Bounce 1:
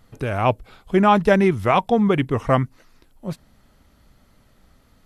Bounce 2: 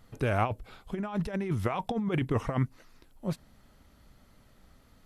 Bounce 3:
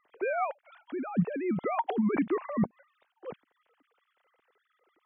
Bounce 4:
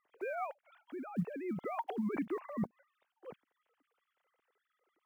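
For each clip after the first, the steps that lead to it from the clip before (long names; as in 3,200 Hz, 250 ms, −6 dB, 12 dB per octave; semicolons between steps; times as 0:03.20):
compressor whose output falls as the input rises −20 dBFS, ratio −0.5; level −7.5 dB
three sine waves on the formant tracks
one scale factor per block 7 bits; level −8.5 dB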